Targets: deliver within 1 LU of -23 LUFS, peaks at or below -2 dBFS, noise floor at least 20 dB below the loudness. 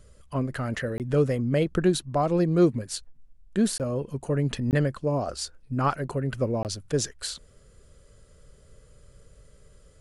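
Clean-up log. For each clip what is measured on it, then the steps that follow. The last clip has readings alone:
dropouts 4; longest dropout 18 ms; loudness -27.0 LUFS; peak -11.0 dBFS; loudness target -23.0 LUFS
-> interpolate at 0.98/3.78/4.71/6.63, 18 ms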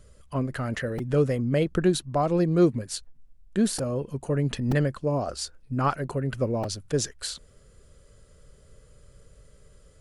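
dropouts 0; loudness -27.0 LUFS; peak -11.0 dBFS; loudness target -23.0 LUFS
-> gain +4 dB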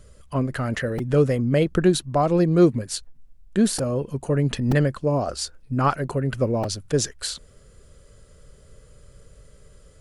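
loudness -23.0 LUFS; peak -7.0 dBFS; noise floor -52 dBFS

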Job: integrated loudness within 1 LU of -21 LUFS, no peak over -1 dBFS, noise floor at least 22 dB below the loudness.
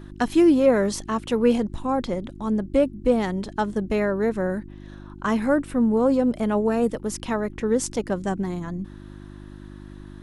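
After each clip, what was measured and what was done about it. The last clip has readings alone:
hum 50 Hz; harmonics up to 350 Hz; hum level -40 dBFS; loudness -23.5 LUFS; peak -7.5 dBFS; loudness target -21.0 LUFS
-> de-hum 50 Hz, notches 7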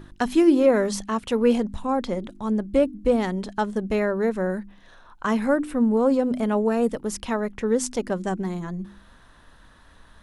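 hum none; loudness -23.5 LUFS; peak -7.0 dBFS; loudness target -21.0 LUFS
-> gain +2.5 dB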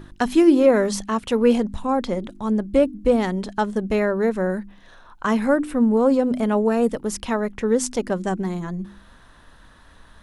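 loudness -21.0 LUFS; peak -4.5 dBFS; noise floor -50 dBFS

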